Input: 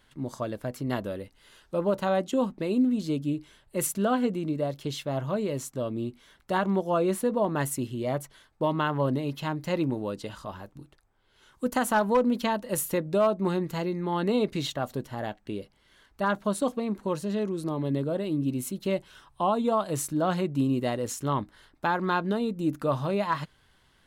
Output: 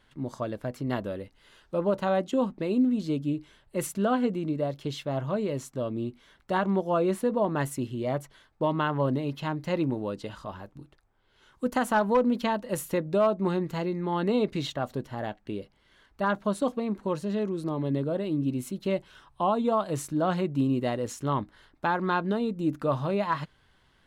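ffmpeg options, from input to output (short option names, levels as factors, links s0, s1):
-af "highshelf=f=6800:g=-10"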